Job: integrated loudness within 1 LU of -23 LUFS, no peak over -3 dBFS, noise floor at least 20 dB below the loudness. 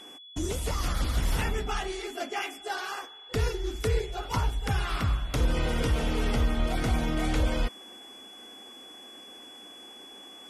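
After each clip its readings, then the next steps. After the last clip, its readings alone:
steady tone 3.4 kHz; tone level -46 dBFS; loudness -30.0 LUFS; peak level -15.5 dBFS; loudness target -23.0 LUFS
-> band-stop 3.4 kHz, Q 30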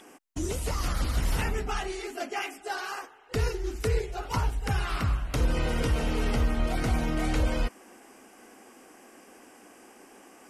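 steady tone not found; loudness -30.5 LUFS; peak level -16.0 dBFS; loudness target -23.0 LUFS
-> trim +7.5 dB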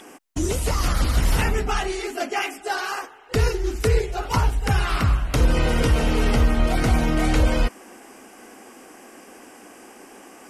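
loudness -23.0 LUFS; peak level -8.5 dBFS; noise floor -47 dBFS

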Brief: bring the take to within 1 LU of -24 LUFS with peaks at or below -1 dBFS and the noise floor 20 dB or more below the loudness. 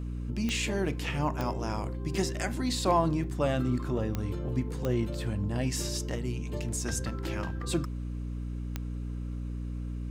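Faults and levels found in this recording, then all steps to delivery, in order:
clicks found 5; hum 60 Hz; highest harmonic 300 Hz; hum level -33 dBFS; loudness -32.0 LUFS; peak level -13.5 dBFS; loudness target -24.0 LUFS
-> de-click; hum notches 60/120/180/240/300 Hz; trim +8 dB

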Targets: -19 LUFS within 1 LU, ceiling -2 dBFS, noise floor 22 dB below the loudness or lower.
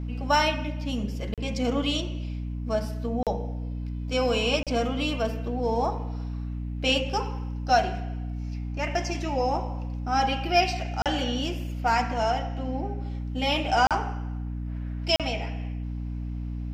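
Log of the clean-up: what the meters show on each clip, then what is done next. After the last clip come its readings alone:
dropouts 6; longest dropout 37 ms; hum 60 Hz; highest harmonic 300 Hz; hum level -30 dBFS; loudness -28.0 LUFS; peak level -9.0 dBFS; loudness target -19.0 LUFS
-> interpolate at 1.34/3.23/4.63/11.02/13.87/15.16 s, 37 ms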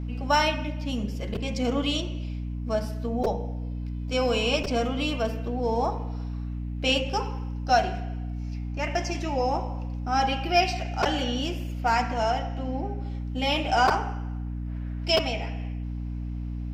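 dropouts 0; hum 60 Hz; highest harmonic 300 Hz; hum level -30 dBFS
-> hum notches 60/120/180/240/300 Hz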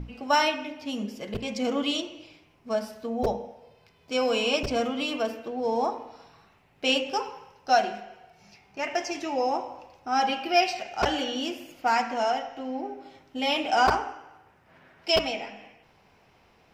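hum not found; loudness -27.5 LUFS; peak level -8.5 dBFS; loudness target -19.0 LUFS
-> trim +8.5 dB; peak limiter -2 dBFS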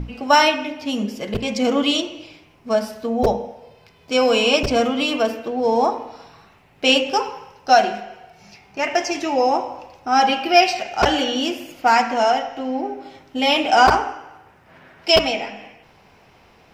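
loudness -19.0 LUFS; peak level -2.0 dBFS; noise floor -52 dBFS

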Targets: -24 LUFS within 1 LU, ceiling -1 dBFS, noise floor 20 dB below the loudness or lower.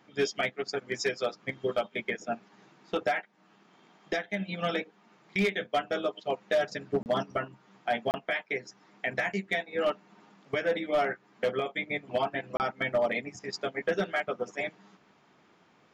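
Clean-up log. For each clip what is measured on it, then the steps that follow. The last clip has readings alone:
dropouts 3; longest dropout 29 ms; loudness -31.5 LUFS; peak level -19.5 dBFS; loudness target -24.0 LUFS
-> interpolate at 7.03/8.11/12.57 s, 29 ms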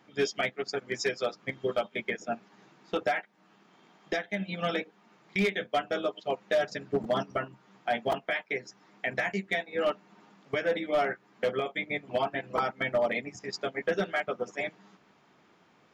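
dropouts 0; loudness -31.5 LUFS; peak level -16.5 dBFS; loudness target -24.0 LUFS
-> trim +7.5 dB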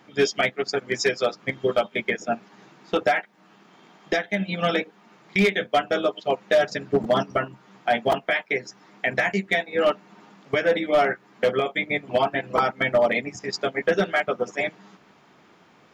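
loudness -24.0 LUFS; peak level -9.0 dBFS; noise floor -56 dBFS

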